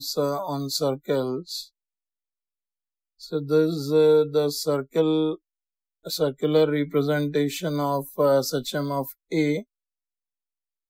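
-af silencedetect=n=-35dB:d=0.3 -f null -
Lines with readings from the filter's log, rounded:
silence_start: 1.63
silence_end: 3.22 | silence_duration: 1.59
silence_start: 5.35
silence_end: 6.06 | silence_duration: 0.71
silence_start: 9.61
silence_end: 10.89 | silence_duration: 1.28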